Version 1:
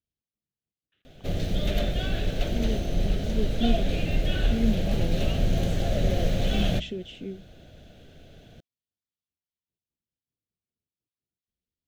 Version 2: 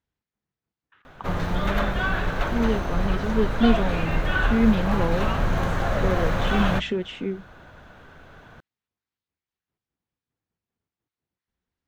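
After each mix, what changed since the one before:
speech +7.0 dB; master: remove FFT filter 210 Hz 0 dB, 680 Hz -3 dB, 1 kHz -25 dB, 3.1 kHz +2 dB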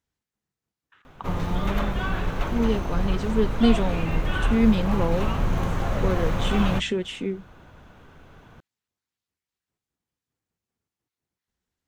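speech: remove distance through air 130 m; background: add fifteen-band graphic EQ 630 Hz -5 dB, 1.6 kHz -7 dB, 4 kHz -4 dB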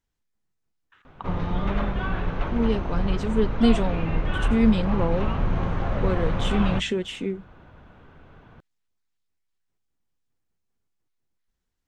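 speech: remove high-pass 62 Hz; background: add distance through air 210 m

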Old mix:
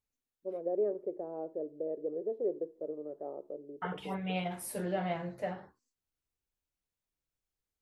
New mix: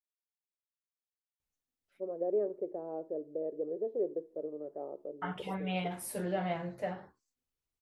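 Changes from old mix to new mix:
first voice: entry +1.55 s; second voice: entry +1.40 s

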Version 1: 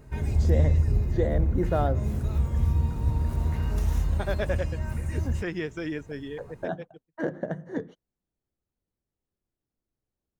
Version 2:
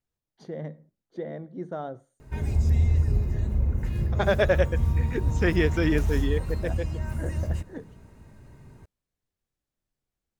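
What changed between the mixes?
first voice -7.5 dB; second voice +8.0 dB; background: entry +2.20 s

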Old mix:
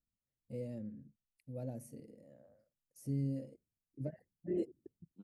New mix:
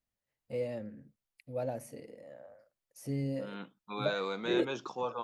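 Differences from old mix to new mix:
second voice: entry -1.80 s; master: remove FFT filter 230 Hz 0 dB, 970 Hz -18 dB, 3.5 kHz -15 dB, 7.6 kHz -5 dB

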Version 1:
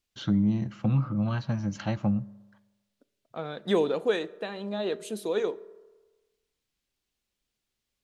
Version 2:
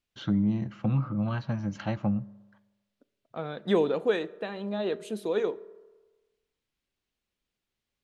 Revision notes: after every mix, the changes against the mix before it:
second voice: add tone controls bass +4 dB, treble +1 dB; master: add tone controls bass -2 dB, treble -8 dB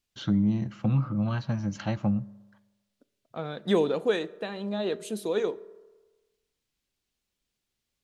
master: add tone controls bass +2 dB, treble +8 dB

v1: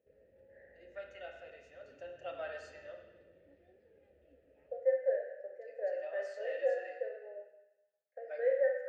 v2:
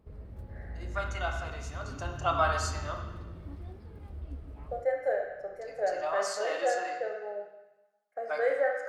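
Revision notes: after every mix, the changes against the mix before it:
master: remove vowel filter e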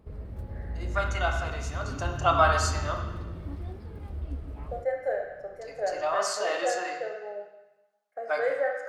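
first voice +5.5 dB; background +6.0 dB

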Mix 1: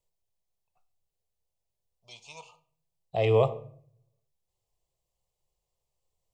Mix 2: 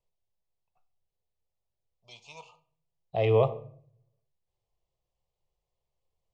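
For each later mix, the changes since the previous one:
first voice: remove distance through air 54 m; master: add distance through air 130 m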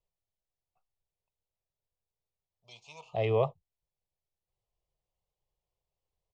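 first voice: entry +0.60 s; reverb: off

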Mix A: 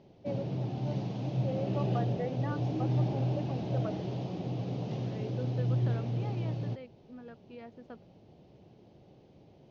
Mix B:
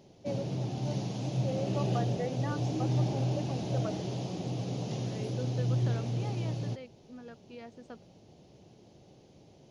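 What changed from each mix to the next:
master: remove distance through air 220 m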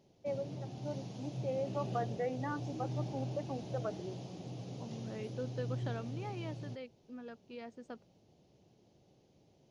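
background -10.0 dB

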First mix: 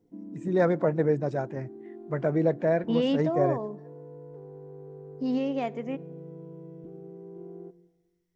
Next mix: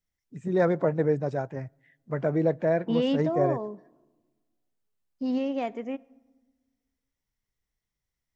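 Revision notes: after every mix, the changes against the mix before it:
background: muted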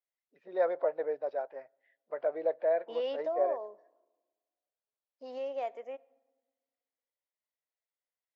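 first voice: add steep low-pass 4.8 kHz 48 dB/octave; master: add ladder high-pass 490 Hz, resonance 50%

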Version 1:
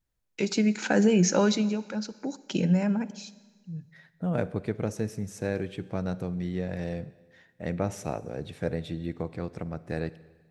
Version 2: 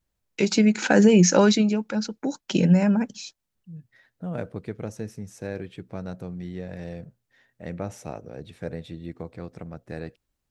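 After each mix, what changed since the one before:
first voice +9.0 dB; reverb: off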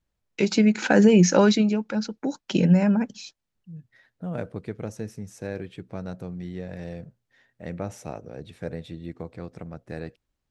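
first voice: add distance through air 58 m

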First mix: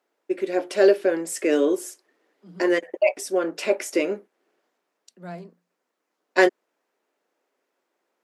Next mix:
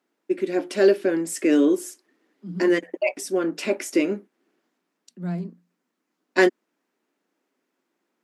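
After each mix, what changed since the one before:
first voice: add bass shelf 480 Hz -5.5 dB; master: add resonant low shelf 370 Hz +10 dB, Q 1.5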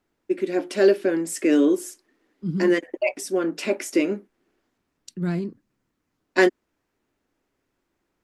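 second voice: remove rippled Chebyshev high-pass 170 Hz, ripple 9 dB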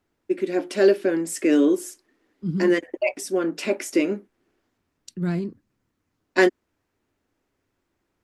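master: add peaking EQ 92 Hz +7.5 dB 0.51 oct

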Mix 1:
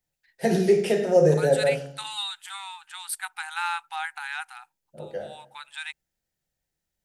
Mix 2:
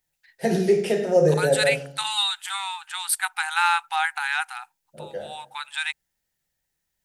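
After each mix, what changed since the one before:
second voice +8.0 dB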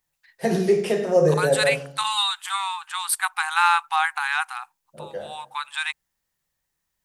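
master: add peaking EQ 1.1 kHz +13.5 dB 0.25 oct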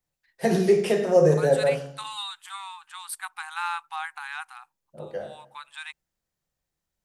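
second voice -11.5 dB

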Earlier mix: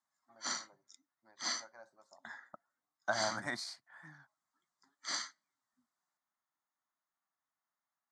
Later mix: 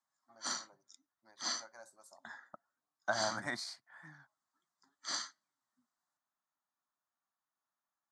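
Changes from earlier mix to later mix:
first voice: remove distance through air 220 m; background: add peaking EQ 2.1 kHz -8.5 dB 0.24 oct

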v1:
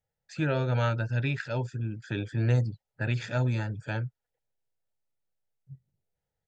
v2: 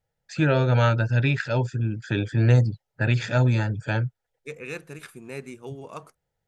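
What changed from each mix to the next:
first voice +7.0 dB; second voice: entry -2.55 s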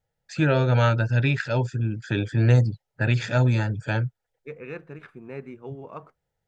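second voice: add low-pass 1.8 kHz 12 dB/octave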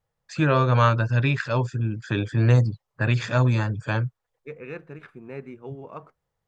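first voice: remove Butterworth band-stop 1.1 kHz, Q 3.3

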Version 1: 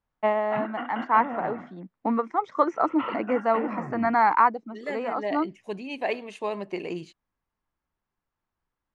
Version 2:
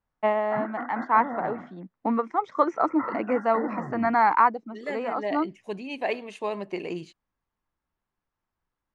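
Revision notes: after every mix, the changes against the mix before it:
background: add brick-wall FIR low-pass 2.1 kHz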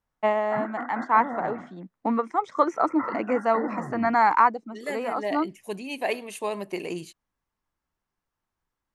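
master: remove distance through air 130 m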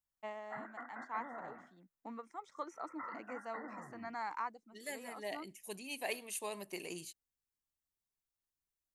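first voice -9.0 dB; background: add bass shelf 480 Hz -6.5 dB; master: add pre-emphasis filter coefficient 0.8

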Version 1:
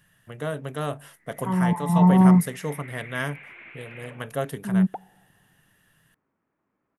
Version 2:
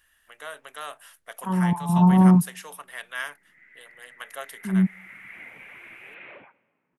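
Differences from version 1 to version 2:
first voice: add high-pass 1.1 kHz 12 dB/octave; background: entry +2.25 s

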